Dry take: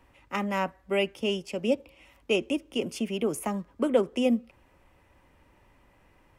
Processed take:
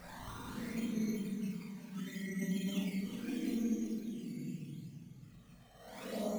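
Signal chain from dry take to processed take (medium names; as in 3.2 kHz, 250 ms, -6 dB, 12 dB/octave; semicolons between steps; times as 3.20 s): reverb removal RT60 0.74 s; low-pass that closes with the level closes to 310 Hz, closed at -22.5 dBFS; treble shelf 3.6 kHz +8.5 dB; hum notches 60/120/180/240/300 Hz; compression 6:1, threshold -31 dBFS, peak gain reduction 8.5 dB; Paulstretch 12×, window 0.10 s, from 2.94 s; decimation with a swept rate 9×, swing 100% 0.74 Hz; formant shift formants -6 st; touch-sensitive flanger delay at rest 2 ms, full sweep at -31 dBFS; two-band feedback delay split 580 Hz, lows 260 ms, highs 371 ms, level -11 dB; on a send at -1 dB: reverberation RT60 0.35 s, pre-delay 31 ms; on the sum: trim -4.5 dB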